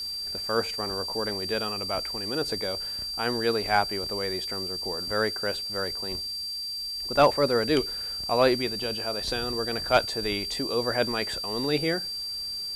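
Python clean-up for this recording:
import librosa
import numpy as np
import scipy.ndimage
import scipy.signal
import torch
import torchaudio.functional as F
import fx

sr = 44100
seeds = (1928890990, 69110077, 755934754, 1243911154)

y = fx.fix_declip(x, sr, threshold_db=-9.5)
y = fx.notch(y, sr, hz=4700.0, q=30.0)
y = fx.noise_reduce(y, sr, print_start_s=6.34, print_end_s=6.84, reduce_db=30.0)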